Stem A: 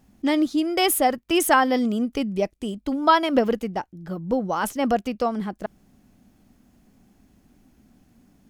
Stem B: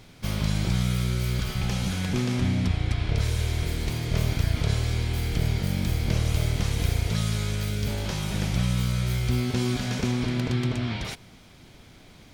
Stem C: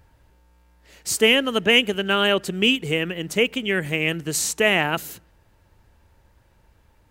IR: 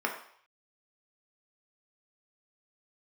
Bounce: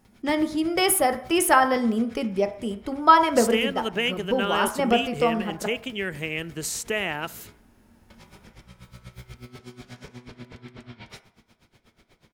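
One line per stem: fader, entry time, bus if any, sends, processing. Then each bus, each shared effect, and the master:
-4.5 dB, 0.00 s, send -8.5 dB, peaking EQ 10 kHz +6.5 dB 0.28 oct
-6.5 dB, 0.05 s, muted 7.56–8.10 s, send -12 dB, peak limiter -24.5 dBFS, peak gain reduction 12 dB; logarithmic tremolo 8.2 Hz, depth 21 dB; auto duck -8 dB, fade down 1.90 s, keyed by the first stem
-3.0 dB, 2.30 s, send -23 dB, compression 1.5:1, threshold -31 dBFS, peak gain reduction 7.5 dB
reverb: on, RT60 0.60 s, pre-delay 3 ms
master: none

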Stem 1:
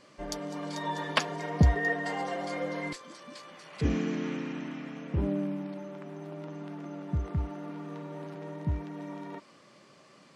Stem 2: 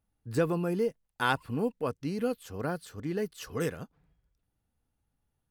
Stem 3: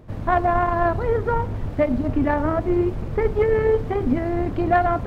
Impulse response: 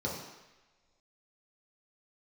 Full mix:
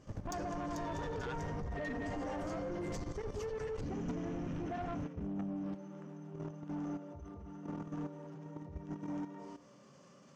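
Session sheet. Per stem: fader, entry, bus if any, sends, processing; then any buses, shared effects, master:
-1.0 dB, 0.00 s, send -7 dB, treble shelf 4.7 kHz -11 dB; slow attack 208 ms
-16.5 dB, 0.00 s, no send, spectral gate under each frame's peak -25 dB strong; peaking EQ 2 kHz +11.5 dB 0.83 oct
-4.0 dB, 0.00 s, no send, treble shelf 2.1 kHz -9.5 dB; peak limiter -16 dBFS, peak gain reduction 8 dB; tremolo of two beating tones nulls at 11 Hz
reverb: on, pre-delay 3 ms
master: peaking EQ 6.5 kHz +11.5 dB 0.94 oct; level held to a coarse grid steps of 12 dB; saturation -34 dBFS, distortion -12 dB

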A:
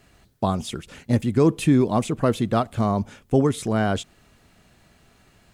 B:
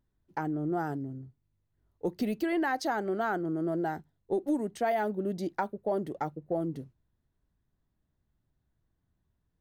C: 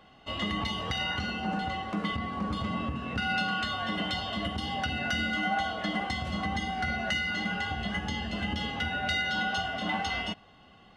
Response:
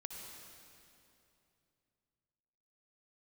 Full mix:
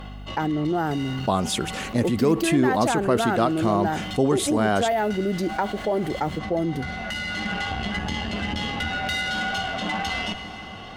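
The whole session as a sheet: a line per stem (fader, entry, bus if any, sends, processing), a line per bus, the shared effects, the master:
-1.0 dB, 0.85 s, no send, bass shelf 160 Hz -11 dB
+1.0 dB, 0.00 s, no send, hum 50 Hz, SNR 26 dB
-7.5 dB, 0.00 s, send -9.5 dB, Chebyshev shaper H 6 -20 dB, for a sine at -18 dBFS; auto duck -16 dB, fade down 0.25 s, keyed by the second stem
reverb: on, RT60 2.8 s, pre-delay 55 ms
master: level flattener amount 50%

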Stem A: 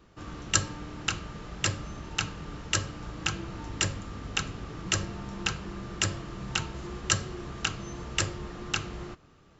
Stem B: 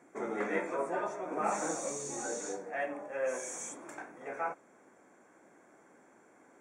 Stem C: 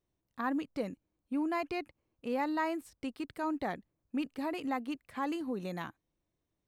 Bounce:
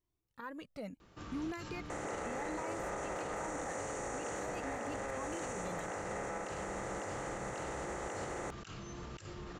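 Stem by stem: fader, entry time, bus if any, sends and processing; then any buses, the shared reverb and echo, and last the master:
-6.0 dB, 1.00 s, no send, bass shelf 140 Hz -3 dB; compressor with a negative ratio -39 dBFS, ratio -1; peak limiter -31.5 dBFS, peak gain reduction 6 dB
-10.5 dB, 1.90 s, no send, spectral levelling over time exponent 0.2
0.0 dB, 0.00 s, no send, peak limiter -29 dBFS, peak gain reduction 7.5 dB; Shepard-style flanger rising 0.79 Hz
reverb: none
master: peak limiter -31 dBFS, peak gain reduction 7.5 dB

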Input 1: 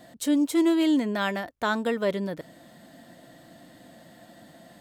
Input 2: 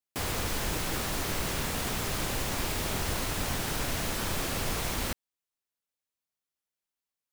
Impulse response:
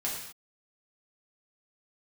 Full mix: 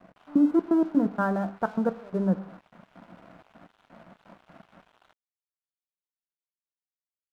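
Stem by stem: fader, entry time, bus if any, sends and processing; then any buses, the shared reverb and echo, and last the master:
+1.5 dB, 0.00 s, send -14.5 dB, hum notches 50/100/150/200/250/300 Hz; trance gate "x..xx.x.x.xxxx." 127 bpm -24 dB
-5.0 dB, 0.00 s, send -12 dB, steep high-pass 580 Hz 72 dB/octave; peak limiter -29.5 dBFS, peak gain reduction 8.5 dB; auto duck -7 dB, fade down 0.40 s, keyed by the first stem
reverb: on, pre-delay 3 ms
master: elliptic low-pass 1.5 kHz; peaking EQ 190 Hz +11.5 dB 0.23 oct; crossover distortion -49 dBFS

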